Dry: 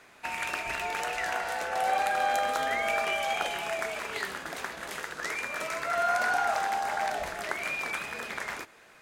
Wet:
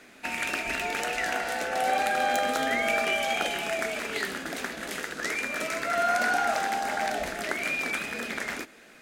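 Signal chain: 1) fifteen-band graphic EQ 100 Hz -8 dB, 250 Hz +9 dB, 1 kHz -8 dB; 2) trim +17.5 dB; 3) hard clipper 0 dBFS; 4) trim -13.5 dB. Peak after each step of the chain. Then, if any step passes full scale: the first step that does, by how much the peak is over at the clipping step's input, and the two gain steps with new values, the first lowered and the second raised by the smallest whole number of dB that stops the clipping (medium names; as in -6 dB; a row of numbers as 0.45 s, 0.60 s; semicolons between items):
-13.0 dBFS, +4.5 dBFS, 0.0 dBFS, -13.5 dBFS; step 2, 4.5 dB; step 2 +12.5 dB, step 4 -8.5 dB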